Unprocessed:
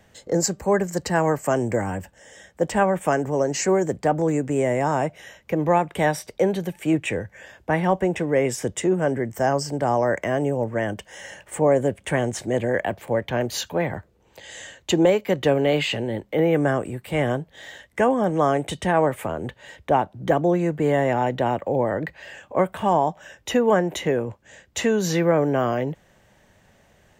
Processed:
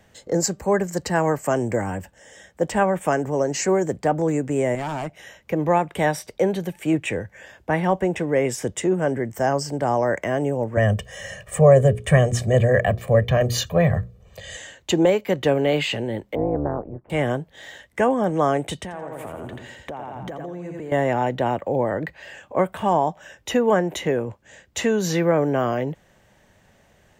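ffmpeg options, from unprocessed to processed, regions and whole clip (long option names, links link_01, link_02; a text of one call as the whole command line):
ffmpeg -i in.wav -filter_complex "[0:a]asettb=1/sr,asplit=3[link_01][link_02][link_03];[link_01]atrim=end=4.754[link_04];[link_02]atrim=start=4.75:end=5.17,asetpts=PTS-STARTPTS,afade=type=in:duration=0.004:curve=qsin,afade=type=out:start_time=0.416:duration=0.004:curve=qsin,equalizer=frequency=500:width_type=o:width=0.24:gain=-12.5,tremolo=f=140:d=0.571,asoftclip=type=hard:threshold=-23.5dB[link_05];[link_03]atrim=start=5.166[link_06];[link_04][link_05]acrossfade=duration=0.004:curve1=hsin:curve2=qsin[link_07];[link_07][link_06]acrossfade=duration=0.004:curve1=qsin:curve2=hsin,asettb=1/sr,asplit=3[link_08][link_09][link_10];[link_08]atrim=end=10.774[link_11];[link_09]atrim=start=10.77:end=14.57,asetpts=PTS-STARTPTS,afade=type=in:duration=0.004:curve=qsin,afade=type=out:start_time=3.796:duration=0.004:curve=qsin,bass=frequency=250:gain=11,treble=frequency=4000:gain=0,bandreject=frequency=60:width_type=h:width=6,bandreject=frequency=120:width_type=h:width=6,bandreject=frequency=180:width_type=h:width=6,bandreject=frequency=240:width_type=h:width=6,bandreject=frequency=300:width_type=h:width=6,bandreject=frequency=360:width_type=h:width=6,bandreject=frequency=420:width_type=h:width=6,bandreject=frequency=480:width_type=h:width=6,aecho=1:1:1.7:0.94,atrim=end_sample=167580[link_12];[link_10]atrim=start=14.566[link_13];[link_11][link_12]acrossfade=duration=0.004:curve1=hsin:curve2=qsin[link_14];[link_14][link_13]acrossfade=duration=0.004:curve1=qsin:curve2=hsin,asettb=1/sr,asplit=3[link_15][link_16][link_17];[link_15]atrim=end=16.354[link_18];[link_16]atrim=start=16.35:end=17.1,asetpts=PTS-STARTPTS,afade=type=in:duration=0.004:curve=qsin,afade=type=out:start_time=0.746:duration=0.004:curve=qsin,lowpass=frequency=1100:width=0.5412,lowpass=frequency=1100:width=1.3066,tremolo=f=220:d=0.857[link_19];[link_17]atrim=start=17.096[link_20];[link_18][link_19]acrossfade=duration=0.004:curve1=hsin:curve2=qsin[link_21];[link_21][link_20]acrossfade=duration=0.004:curve1=qsin:curve2=hsin,asettb=1/sr,asplit=3[link_22][link_23][link_24];[link_22]atrim=end=18.824[link_25];[link_23]atrim=start=18.82:end=20.92,asetpts=PTS-STARTPTS,afade=type=in:duration=0.004:curve=qsin,afade=type=out:start_time=2.096:duration=0.004:curve=qsin,aecho=1:1:85|170|255|340|425:0.562|0.225|0.09|0.036|0.0144,atrim=end_sample=92610,acompressor=threshold=-29dB:ratio=12:attack=3.2:release=140:knee=1:detection=peak[link_26];[link_24]atrim=start=20.916[link_27];[link_25][link_26]acrossfade=duration=0.004:curve1=hsin:curve2=qsin[link_28];[link_28][link_27]acrossfade=duration=0.004:curve1=qsin:curve2=hsin" out.wav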